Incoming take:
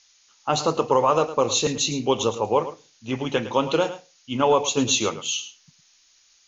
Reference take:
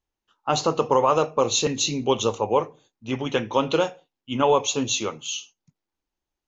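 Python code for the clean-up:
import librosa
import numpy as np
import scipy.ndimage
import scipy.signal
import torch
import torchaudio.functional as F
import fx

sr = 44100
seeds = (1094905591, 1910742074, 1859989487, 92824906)

y = fx.noise_reduce(x, sr, print_start_s=5.96, print_end_s=6.46, reduce_db=26.0)
y = fx.fix_echo_inverse(y, sr, delay_ms=108, level_db=-13.0)
y = fx.fix_level(y, sr, at_s=4.77, step_db=-3.5)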